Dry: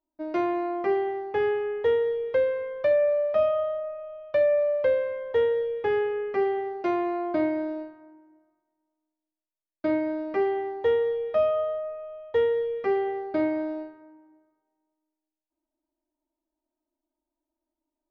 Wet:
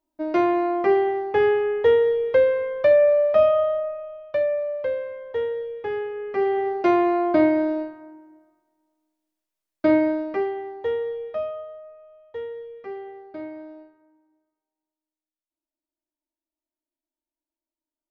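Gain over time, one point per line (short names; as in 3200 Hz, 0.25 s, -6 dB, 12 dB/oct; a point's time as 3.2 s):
3.8 s +6 dB
4.62 s -3 dB
6.14 s -3 dB
6.69 s +7.5 dB
10.04 s +7.5 dB
10.54 s -2.5 dB
11.25 s -2.5 dB
11.67 s -10 dB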